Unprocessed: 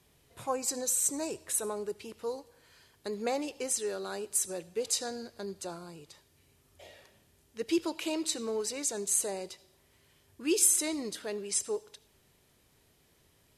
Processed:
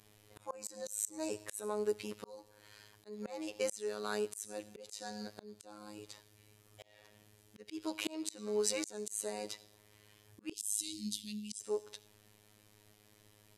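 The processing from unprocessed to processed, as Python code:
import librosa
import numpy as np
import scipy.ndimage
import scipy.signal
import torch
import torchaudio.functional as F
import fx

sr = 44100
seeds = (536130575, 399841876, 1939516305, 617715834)

y = fx.robotise(x, sr, hz=105.0)
y = fx.auto_swell(y, sr, attack_ms=401.0)
y = fx.ellip_bandstop(y, sr, low_hz=230.0, high_hz=3100.0, order=3, stop_db=40, at=(10.52, 11.59), fade=0.02)
y = y * 10.0 ** (4.0 / 20.0)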